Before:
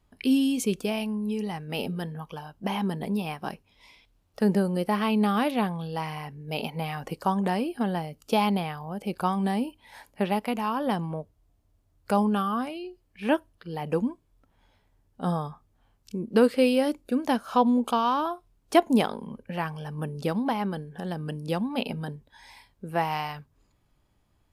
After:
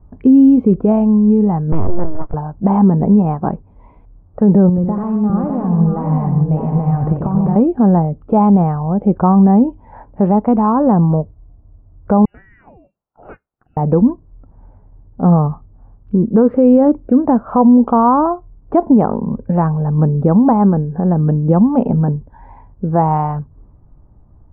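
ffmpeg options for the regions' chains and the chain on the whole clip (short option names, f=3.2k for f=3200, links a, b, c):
-filter_complex "[0:a]asettb=1/sr,asplit=3[a][b][c];[a]atrim=end=1.724[d];[b]atrim=start=1.72:end=2.34,asetpts=PTS-STARTPTS,afade=t=in:d=0.004:c=qsin,afade=t=out:st=0.616:d=0.004:c=qsin,highpass=f=110:w=0.5412,highpass=f=110:w=1.3066,aeval=exprs='abs(val(0))':c=same[e];[c]atrim=start=2.336[f];[d][e]acrossfade=d=0.004:c1=hsin:c2=qsin[g];[g][f]acrossfade=d=0.004:c1=qsin:c2=hsin,asettb=1/sr,asplit=3[h][i][j];[h]atrim=end=4.694[k];[i]atrim=start=4.69:end=7.56,asetpts=PTS-STARTPTS,afade=t=in:d=0.004:c=qsin,afade=t=out:st=2.866:d=0.004:c=qsin,acompressor=threshold=-34dB:ratio=12:attack=3.2:release=140:knee=1:detection=peak,equalizer=f=110:t=o:w=1.5:g=6.5,aecho=1:1:90|146|605|745:0.422|0.299|0.562|0.211,atrim=end_sample=126567[l];[j]atrim=start=7.556[m];[k][l]acrossfade=d=0.004:c1=hsin:c2=qsin[n];[n][m]acrossfade=d=0.004:c1=qsin:c2=hsin,asettb=1/sr,asplit=3[o][p][q];[o]atrim=end=12.254[r];[p]atrim=start=12.25:end=13.77,asetpts=PTS-STARTPTS,afade=t=in:d=0.004:c=qsin,afade=t=out:st=1.516:d=0.004:c=qsin,aderivative,lowpass=f=2.6k:t=q:w=0.5098,lowpass=f=2.6k:t=q:w=0.6013,lowpass=f=2.6k:t=q:w=0.9,lowpass=f=2.6k:t=q:w=2.563,afreqshift=-3100[s];[q]atrim=start=13.766[t];[r][s]acrossfade=d=0.004:c1=hsin:c2=qsin[u];[u][t]acrossfade=d=0.004:c1=qsin:c2=hsin,lowpass=f=1.1k:w=0.5412,lowpass=f=1.1k:w=1.3066,lowshelf=f=200:g=11.5,alimiter=level_in=15.5dB:limit=-1dB:release=50:level=0:latency=1,volume=-2dB"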